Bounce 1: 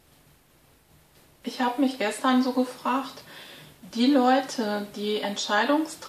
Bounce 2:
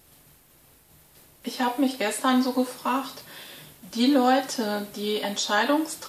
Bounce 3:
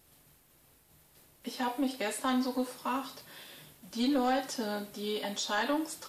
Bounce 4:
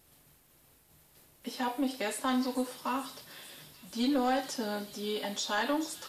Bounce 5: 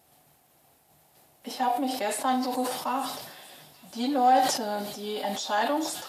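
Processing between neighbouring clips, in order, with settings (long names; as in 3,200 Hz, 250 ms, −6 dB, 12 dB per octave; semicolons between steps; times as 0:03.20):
high-shelf EQ 8,100 Hz +11 dB
soft clipping −13.5 dBFS, distortion −20 dB; level −7 dB
delay with a high-pass on its return 438 ms, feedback 71%, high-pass 3,600 Hz, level −10.5 dB
high-pass filter 95 Hz 12 dB per octave; parametric band 740 Hz +12.5 dB 0.48 octaves; level that may fall only so fast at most 53 dB per second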